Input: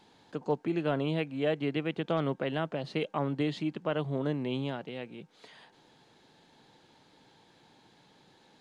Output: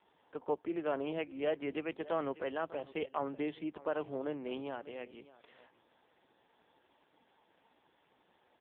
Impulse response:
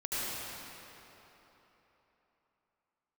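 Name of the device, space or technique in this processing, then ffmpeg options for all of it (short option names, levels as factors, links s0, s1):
satellite phone: -af "highpass=340,lowpass=3200,aecho=1:1:597:0.112,volume=0.794" -ar 8000 -c:a libopencore_amrnb -b:a 5150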